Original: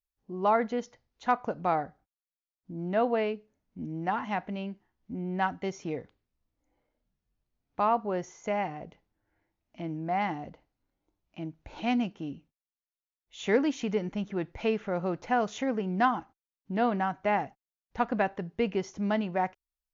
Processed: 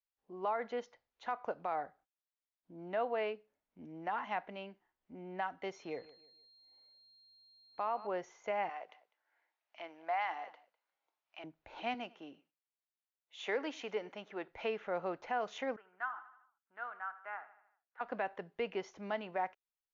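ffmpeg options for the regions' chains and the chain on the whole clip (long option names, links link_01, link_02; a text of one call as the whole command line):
ffmpeg -i in.wav -filter_complex "[0:a]asettb=1/sr,asplit=3[link_01][link_02][link_03];[link_01]atrim=end=5.764[link_04];[link_02]atrim=start=5.76:end=8.07,asetpts=PTS-STARTPTS,afade=type=in:duration=0.004:curve=qsin,afade=type=out:start_time=2.306:duration=0.004:curve=qsin,aeval=exprs='val(0)+0.00158*sin(2*PI*4200*n/s)':channel_layout=same,asplit=2[link_05][link_06];[link_06]adelay=155,lowpass=frequency=3900:poles=1,volume=-19dB,asplit=2[link_07][link_08];[link_08]adelay=155,lowpass=frequency=3900:poles=1,volume=0.34,asplit=2[link_09][link_10];[link_10]adelay=155,lowpass=frequency=3900:poles=1,volume=0.34[link_11];[link_05][link_07][link_09][link_11]amix=inputs=4:normalize=0,atrim=end_sample=101871[link_12];[link_03]atrim=start=8.066[link_13];[link_04][link_12]acrossfade=duration=0.004:curve1=hsin:curve2=qsin[link_14];[link_14][link_13]acrossfade=duration=0.004:curve1=qsin:curve2=hsin,asettb=1/sr,asplit=3[link_15][link_16][link_17];[link_15]atrim=end=8.694[link_18];[link_16]atrim=start=8.69:end=11.44,asetpts=PTS-STARTPTS,afade=type=in:duration=0.004:curve=qsin,afade=type=out:start_time=2.746:duration=0.004:curve=qsin,highpass=790,aecho=1:1:201:0.075,atrim=end_sample=121275,acontrast=32[link_19];[link_17]atrim=start=11.436[link_20];[link_18][link_19]acrossfade=duration=0.004:curve1=hsin:curve2=qsin[link_21];[link_21][link_20]acrossfade=duration=0.004:curve1=qsin:curve2=hsin,asettb=1/sr,asplit=3[link_22][link_23][link_24];[link_22]atrim=end=11.944[link_25];[link_23]atrim=start=11.94:end=14.48,asetpts=PTS-STARTPTS,afade=type=in:duration=0.004:curve=qsin,afade=type=out:start_time=2.536:duration=0.004:curve=qsin,highpass=110,bass=frequency=250:gain=-8,treble=frequency=4000:gain=1,aecho=1:1:99:0.075,atrim=end_sample=112014[link_26];[link_24]atrim=start=14.476[link_27];[link_25][link_26]acrossfade=duration=0.004:curve1=hsin:curve2=qsin[link_28];[link_28][link_27]acrossfade=duration=0.004:curve1=qsin:curve2=hsin,asettb=1/sr,asplit=3[link_29][link_30][link_31];[link_29]atrim=end=15.764[link_32];[link_30]atrim=start=15.76:end=18.01,asetpts=PTS-STARTPTS,afade=type=in:duration=0.004:curve=qsin,afade=type=out:start_time=2.246:duration=0.004:curve=qsin,bandpass=frequency=1400:width_type=q:width=5.1,aecho=1:1:77|154|231|308|385:0.178|0.096|0.0519|0.028|0.0151,atrim=end_sample=99225[link_33];[link_31]atrim=start=18.006[link_34];[link_32][link_33]acrossfade=duration=0.004:curve1=hsin:curve2=qsin[link_35];[link_35][link_34]acrossfade=duration=0.004:curve1=qsin:curve2=hsin,acrossover=split=400 4200:gain=0.158 1 0.224[link_36][link_37][link_38];[link_36][link_37][link_38]amix=inputs=3:normalize=0,alimiter=limit=-23dB:level=0:latency=1:release=129,volume=-3dB" out.wav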